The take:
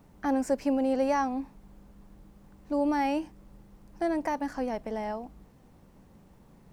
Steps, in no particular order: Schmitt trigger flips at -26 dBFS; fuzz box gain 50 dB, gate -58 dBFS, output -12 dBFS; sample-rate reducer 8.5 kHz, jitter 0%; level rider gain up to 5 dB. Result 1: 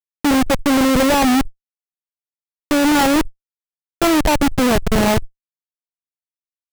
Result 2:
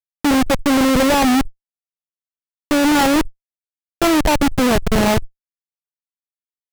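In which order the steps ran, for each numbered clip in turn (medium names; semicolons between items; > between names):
level rider > Schmitt trigger > fuzz box > sample-rate reducer; level rider > Schmitt trigger > sample-rate reducer > fuzz box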